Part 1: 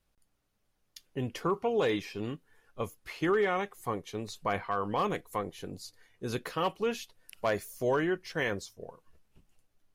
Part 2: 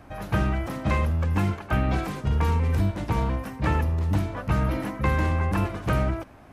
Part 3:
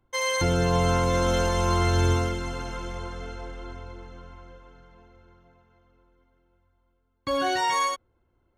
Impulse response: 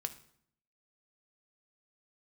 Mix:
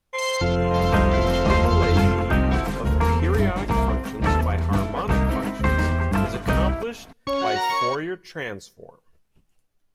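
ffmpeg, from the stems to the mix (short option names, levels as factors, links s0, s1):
-filter_complex "[0:a]acontrast=77,volume=0.398,asplit=2[s0][s1];[s1]volume=0.251[s2];[1:a]aecho=1:1:4.4:0.43,adelay=600,volume=1.41[s3];[2:a]bandreject=f=1600:w=5.6,afwtdn=0.0141,volume=0.944,asplit=2[s4][s5];[s5]volume=0.376[s6];[3:a]atrim=start_sample=2205[s7];[s2][s6]amix=inputs=2:normalize=0[s8];[s8][s7]afir=irnorm=-1:irlink=0[s9];[s0][s3][s4][s9]amix=inputs=4:normalize=0"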